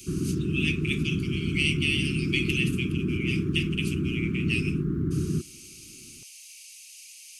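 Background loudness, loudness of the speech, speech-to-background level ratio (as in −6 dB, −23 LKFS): −28.5 LKFS, −30.0 LKFS, −1.5 dB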